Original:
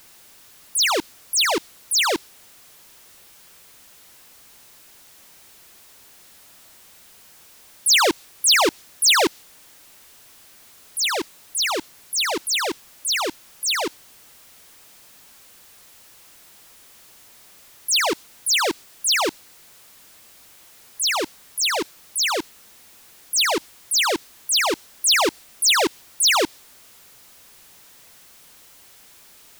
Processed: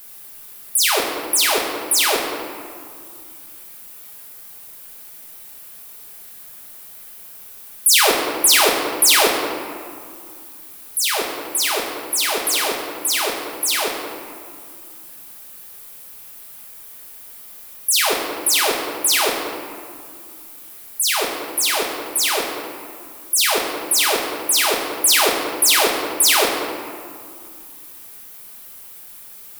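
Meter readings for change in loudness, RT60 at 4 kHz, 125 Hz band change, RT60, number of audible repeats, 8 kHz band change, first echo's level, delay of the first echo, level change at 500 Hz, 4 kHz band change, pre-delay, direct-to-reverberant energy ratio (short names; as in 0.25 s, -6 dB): +3.0 dB, 1.2 s, n/a, 2.2 s, none, +4.5 dB, none, none, +3.5 dB, +1.5 dB, 5 ms, -3.5 dB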